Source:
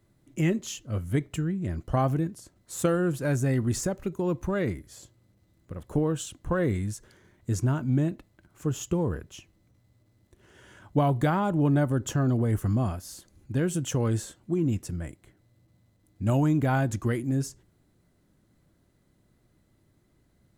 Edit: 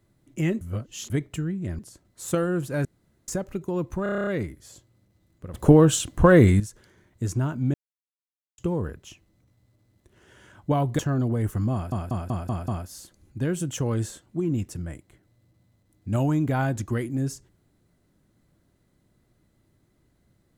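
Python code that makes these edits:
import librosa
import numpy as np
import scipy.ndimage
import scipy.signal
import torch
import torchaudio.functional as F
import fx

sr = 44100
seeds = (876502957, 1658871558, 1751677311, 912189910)

y = fx.edit(x, sr, fx.reverse_span(start_s=0.61, length_s=0.49),
    fx.cut(start_s=1.79, length_s=0.51),
    fx.room_tone_fill(start_s=3.36, length_s=0.43),
    fx.stutter(start_s=4.54, slice_s=0.03, count=9),
    fx.clip_gain(start_s=5.81, length_s=1.06, db=11.5),
    fx.silence(start_s=8.01, length_s=0.84),
    fx.cut(start_s=11.26, length_s=0.82),
    fx.stutter(start_s=12.82, slice_s=0.19, count=6), tone=tone)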